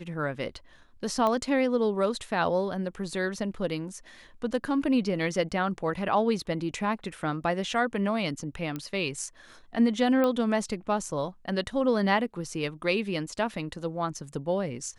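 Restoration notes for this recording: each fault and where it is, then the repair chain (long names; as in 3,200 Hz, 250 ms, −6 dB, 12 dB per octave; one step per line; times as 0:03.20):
0:01.27: click −16 dBFS
0:08.76: click −20 dBFS
0:10.24: click −15 dBFS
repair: click removal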